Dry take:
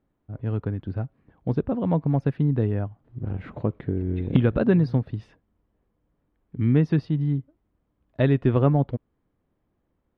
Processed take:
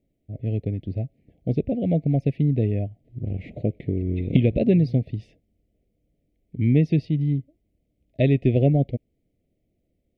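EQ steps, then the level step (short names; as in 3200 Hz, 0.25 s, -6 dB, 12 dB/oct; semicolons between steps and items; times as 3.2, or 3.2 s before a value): elliptic band-stop 670–2100 Hz, stop band 40 dB; dynamic EQ 2400 Hz, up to +5 dB, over -58 dBFS, Q 3.2; +1.5 dB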